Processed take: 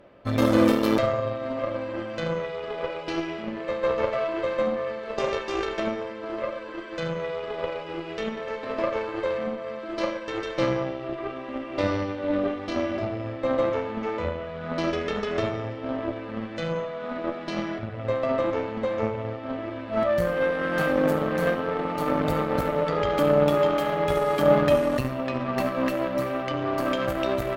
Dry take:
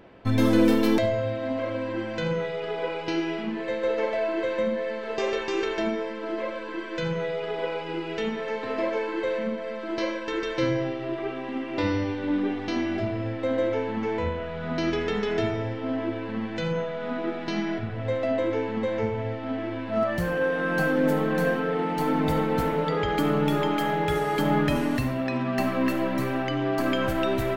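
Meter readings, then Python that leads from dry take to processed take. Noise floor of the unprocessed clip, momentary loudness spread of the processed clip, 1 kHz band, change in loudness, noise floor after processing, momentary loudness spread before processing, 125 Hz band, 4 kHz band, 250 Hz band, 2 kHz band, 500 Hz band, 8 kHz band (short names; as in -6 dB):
-34 dBFS, 11 LU, +1.0 dB, +0.5 dB, -36 dBFS, 7 LU, -2.0 dB, -1.0 dB, -2.0 dB, -1.5 dB, +1.5 dB, n/a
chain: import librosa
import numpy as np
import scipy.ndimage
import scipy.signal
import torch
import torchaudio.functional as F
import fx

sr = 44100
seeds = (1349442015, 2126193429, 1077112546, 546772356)

y = fx.cheby_harmonics(x, sr, harmonics=(6, 7), levels_db=(-21, -25), full_scale_db=-8.5)
y = fx.small_body(y, sr, hz=(580.0, 1200.0), ring_ms=95, db=15)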